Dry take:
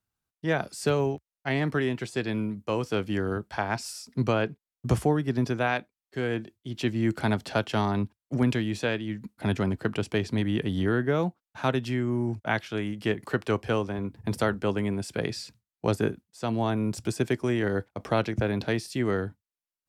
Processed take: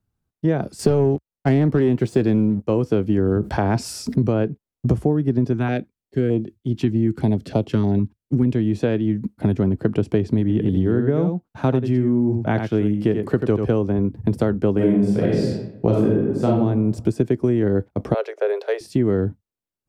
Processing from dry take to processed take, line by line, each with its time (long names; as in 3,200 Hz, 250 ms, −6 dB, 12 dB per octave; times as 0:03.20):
0:00.79–0:02.62: leveller curve on the samples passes 2
0:03.18–0:04.43: envelope flattener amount 50%
0:05.53–0:08.52: notch on a step sequencer 6.5 Hz 540–1,600 Hz
0:10.41–0:13.66: single-tap delay 87 ms −7.5 dB
0:14.73–0:16.55: thrown reverb, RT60 0.86 s, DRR −6 dB
0:18.14–0:18.81: Chebyshev high-pass with heavy ripple 400 Hz, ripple 3 dB
whole clip: tilt shelving filter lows +8.5 dB, about 640 Hz; downward compressor, threshold −23 dBFS; dynamic equaliser 370 Hz, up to +4 dB, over −36 dBFS, Q 0.88; level +6 dB